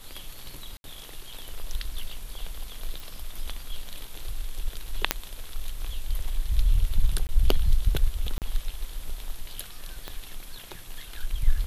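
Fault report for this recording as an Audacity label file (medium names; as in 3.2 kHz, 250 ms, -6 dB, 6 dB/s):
0.770000	0.840000	dropout 71 ms
3.000000	3.000000	pop
5.110000	5.110000	pop -2 dBFS
7.270000	7.290000	dropout 19 ms
8.380000	8.420000	dropout 38 ms
10.080000	10.080000	pop -19 dBFS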